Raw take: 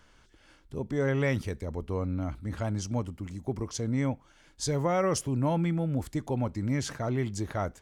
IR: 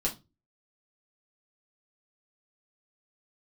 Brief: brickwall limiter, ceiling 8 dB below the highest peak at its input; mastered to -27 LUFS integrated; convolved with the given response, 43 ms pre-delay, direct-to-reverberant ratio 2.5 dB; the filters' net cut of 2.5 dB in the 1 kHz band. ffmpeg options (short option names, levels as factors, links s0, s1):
-filter_complex "[0:a]equalizer=f=1000:t=o:g=-3.5,alimiter=limit=0.0668:level=0:latency=1,asplit=2[s0][s1];[1:a]atrim=start_sample=2205,adelay=43[s2];[s1][s2]afir=irnorm=-1:irlink=0,volume=0.398[s3];[s0][s3]amix=inputs=2:normalize=0,volume=1.5"